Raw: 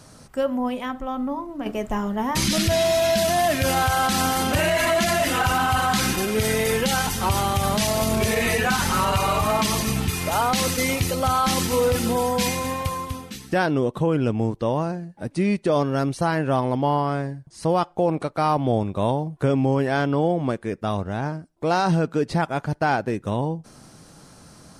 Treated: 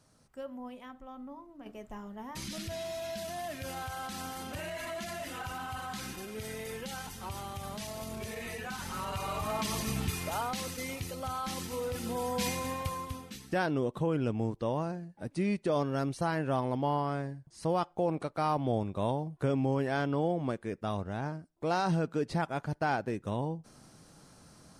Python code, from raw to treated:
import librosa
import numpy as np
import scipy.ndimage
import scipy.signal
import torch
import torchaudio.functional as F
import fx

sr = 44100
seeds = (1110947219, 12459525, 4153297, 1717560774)

y = fx.gain(x, sr, db=fx.line((8.67, -18.5), (10.08, -8.5), (10.66, -15.5), (11.88, -15.5), (12.46, -9.0)))